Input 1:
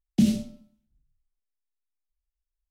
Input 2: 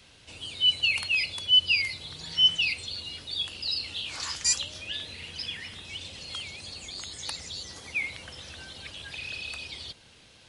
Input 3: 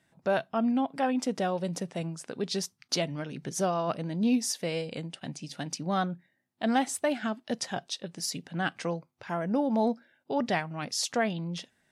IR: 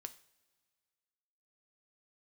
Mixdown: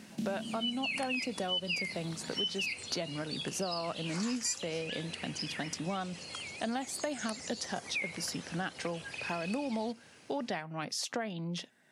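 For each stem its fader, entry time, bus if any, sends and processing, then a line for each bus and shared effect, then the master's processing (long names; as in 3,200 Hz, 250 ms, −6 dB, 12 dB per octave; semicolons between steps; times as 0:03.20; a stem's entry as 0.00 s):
−16.0 dB, 0.00 s, no send, compressor on every frequency bin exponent 0.2
+0.5 dB, 0.00 s, no send, parametric band 3,600 Hz −12.5 dB 0.54 octaves
−2.0 dB, 0.00 s, no send, multiband upward and downward compressor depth 40%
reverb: not used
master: high-pass filter 150 Hz 12 dB per octave; downward compressor 4 to 1, threshold −32 dBFS, peak gain reduction 10 dB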